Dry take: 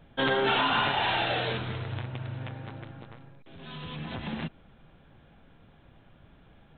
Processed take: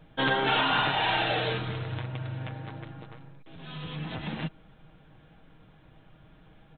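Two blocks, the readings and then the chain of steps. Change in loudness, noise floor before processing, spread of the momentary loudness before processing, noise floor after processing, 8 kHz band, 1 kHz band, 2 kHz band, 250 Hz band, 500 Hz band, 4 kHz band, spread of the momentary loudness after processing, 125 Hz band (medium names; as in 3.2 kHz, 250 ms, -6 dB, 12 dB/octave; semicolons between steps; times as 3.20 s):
+0.5 dB, -58 dBFS, 20 LU, -57 dBFS, no reading, +0.5 dB, +1.0 dB, 0.0 dB, -1.0 dB, +1.0 dB, 19 LU, +1.5 dB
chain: comb 6.4 ms, depth 45%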